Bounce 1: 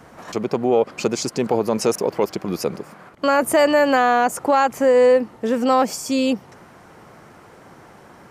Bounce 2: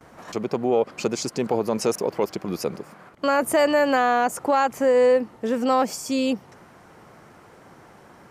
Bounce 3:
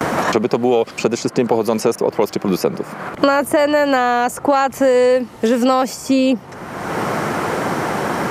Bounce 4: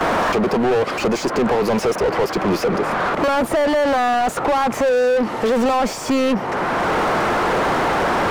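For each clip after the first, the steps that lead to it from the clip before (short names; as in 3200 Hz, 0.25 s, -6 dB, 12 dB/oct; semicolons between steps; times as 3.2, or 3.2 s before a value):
gate with hold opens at -39 dBFS; gain -3.5 dB
three-band squash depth 100%; gain +5.5 dB
overdrive pedal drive 36 dB, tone 1200 Hz, clips at -1 dBFS; gain -8.5 dB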